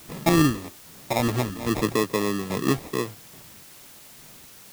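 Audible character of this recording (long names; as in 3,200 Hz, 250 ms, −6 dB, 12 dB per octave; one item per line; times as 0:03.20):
phaser sweep stages 6, 1.1 Hz, lowest notch 510–2,200 Hz
aliases and images of a low sample rate 1,500 Hz, jitter 0%
chopped level 1.2 Hz, depth 60%, duty 35%
a quantiser's noise floor 10 bits, dither triangular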